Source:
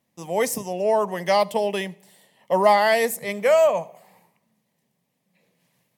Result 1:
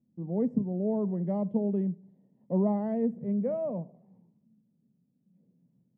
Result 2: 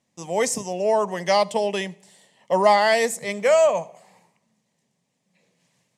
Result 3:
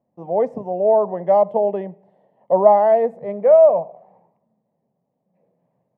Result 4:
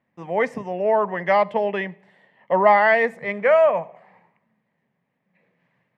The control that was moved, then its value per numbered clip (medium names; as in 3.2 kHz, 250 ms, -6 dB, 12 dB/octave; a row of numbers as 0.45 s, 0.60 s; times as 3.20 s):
resonant low-pass, frequency: 240 Hz, 7.3 kHz, 690 Hz, 1.8 kHz